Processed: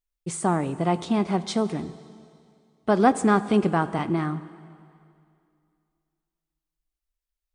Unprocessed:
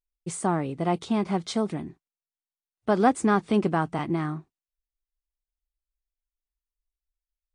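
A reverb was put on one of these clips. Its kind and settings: plate-style reverb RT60 2.4 s, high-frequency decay 0.95×, DRR 14 dB; gain +2 dB

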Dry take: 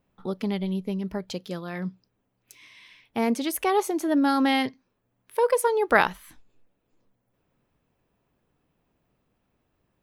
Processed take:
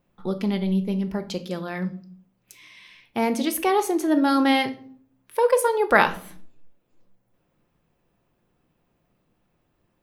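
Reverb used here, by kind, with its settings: shoebox room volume 590 m³, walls furnished, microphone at 0.87 m; gain +2 dB

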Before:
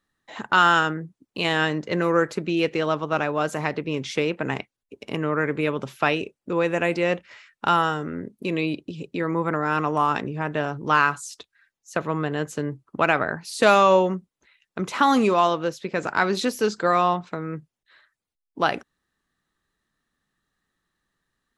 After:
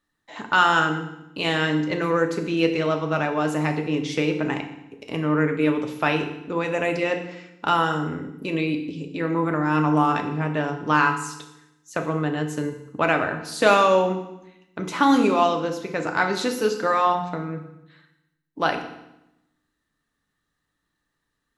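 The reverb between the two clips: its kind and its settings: FDN reverb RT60 0.86 s, low-frequency decay 1.35×, high-frequency decay 0.95×, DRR 4 dB; gain -1.5 dB

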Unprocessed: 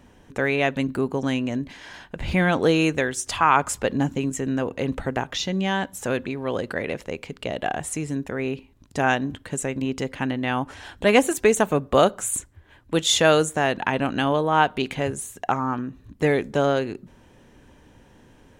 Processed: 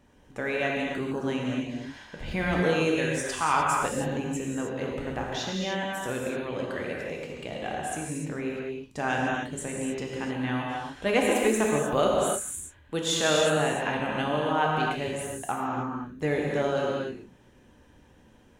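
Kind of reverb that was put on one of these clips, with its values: non-linear reverb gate 0.33 s flat, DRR -2.5 dB; gain -9 dB

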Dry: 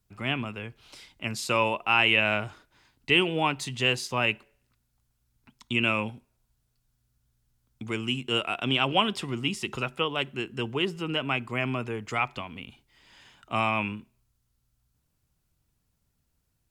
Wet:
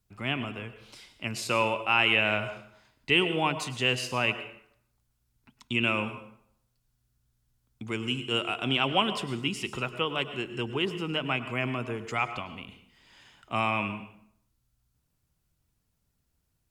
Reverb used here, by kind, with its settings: plate-style reverb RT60 0.67 s, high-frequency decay 0.75×, pre-delay 90 ms, DRR 11 dB; gain -1.5 dB

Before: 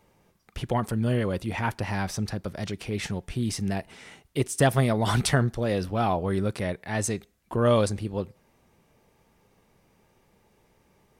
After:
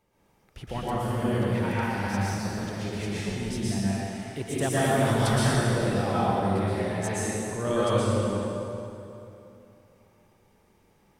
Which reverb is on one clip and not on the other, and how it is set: plate-style reverb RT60 2.9 s, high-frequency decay 0.75×, pre-delay 0.105 s, DRR -9 dB; gain -9 dB

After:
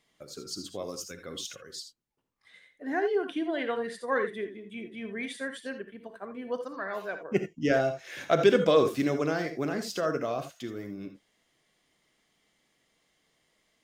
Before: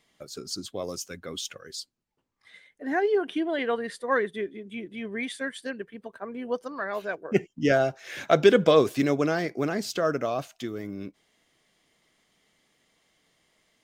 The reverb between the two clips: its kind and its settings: non-linear reverb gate 0.1 s rising, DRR 7.5 dB; gain -4 dB

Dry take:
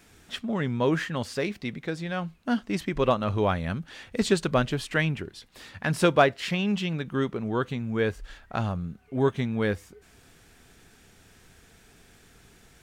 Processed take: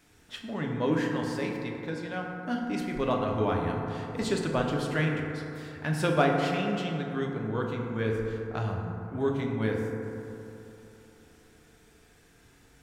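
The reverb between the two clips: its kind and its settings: FDN reverb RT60 3.1 s, high-frequency decay 0.3×, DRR -0.5 dB; gain -6.5 dB

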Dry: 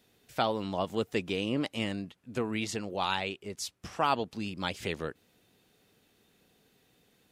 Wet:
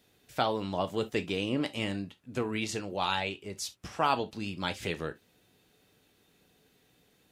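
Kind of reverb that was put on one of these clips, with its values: non-linear reverb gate 90 ms falling, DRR 8 dB

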